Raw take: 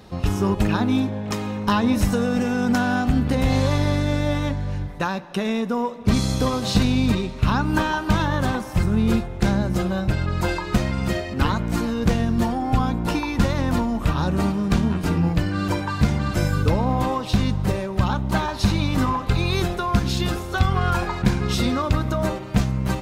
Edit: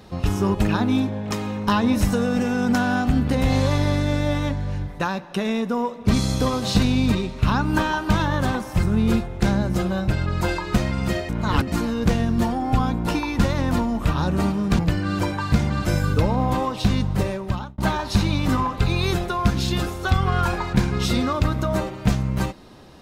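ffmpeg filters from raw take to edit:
-filter_complex "[0:a]asplit=5[s0][s1][s2][s3][s4];[s0]atrim=end=11.292[s5];[s1]atrim=start=11.288:end=11.722,asetpts=PTS-STARTPTS,areverse[s6];[s2]atrim=start=11.718:end=14.792[s7];[s3]atrim=start=15.278:end=18.27,asetpts=PTS-STARTPTS,afade=t=out:st=2.542:d=0.45[s8];[s4]atrim=start=18.27,asetpts=PTS-STARTPTS,afade=t=in:d=0.004:c=hsin[s9];[s5][s6]acrossfade=d=0.004:c1=hsin:c2=hsin[s10];[s10][s7]acrossfade=d=0.004:c1=hsin:c2=hsin[s11];[s8][s9]concat=n=2:v=0:a=1[s12];[s11][s12]acrossfade=d=0.004:c1=hsin:c2=hsin"

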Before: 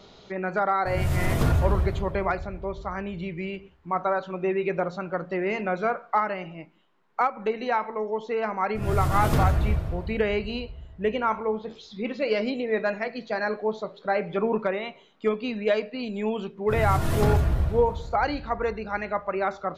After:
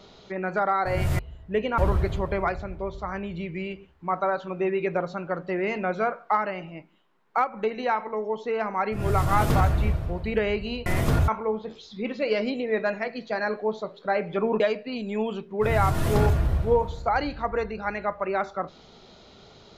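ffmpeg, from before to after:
-filter_complex "[0:a]asplit=6[s0][s1][s2][s3][s4][s5];[s0]atrim=end=1.192[s6];[s1]atrim=start=10.688:end=11.282[s7];[s2]atrim=start=1.608:end=10.692[s8];[s3]atrim=start=1.188:end=1.612[s9];[s4]atrim=start=11.278:end=14.602[s10];[s5]atrim=start=15.668[s11];[s6][s7]acrossfade=d=0.004:c1=hsin:c2=hsin[s12];[s12][s8]acrossfade=d=0.004:c1=hsin:c2=hsin[s13];[s13][s9]acrossfade=d=0.004:c1=hsin:c2=hsin[s14];[s14][s10]acrossfade=d=0.004:c1=hsin:c2=hsin[s15];[s15][s11]acrossfade=d=0.004:c1=hsin:c2=hsin"

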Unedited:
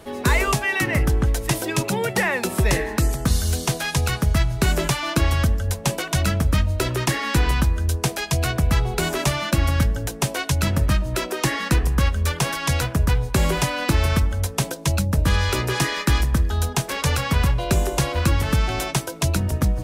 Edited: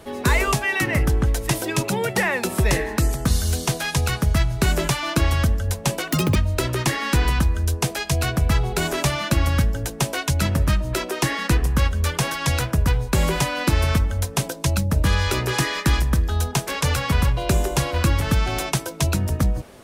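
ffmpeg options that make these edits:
-filter_complex "[0:a]asplit=3[s0][s1][s2];[s0]atrim=end=6.124[s3];[s1]atrim=start=6.12:end=6.57,asetpts=PTS-STARTPTS,asetrate=84231,aresample=44100,atrim=end_sample=10390,asetpts=PTS-STARTPTS[s4];[s2]atrim=start=6.566[s5];[s3][s4]acrossfade=d=0.004:c1=hsin:c2=hsin[s6];[s6][s5]acrossfade=d=0.004:c1=hsin:c2=hsin"

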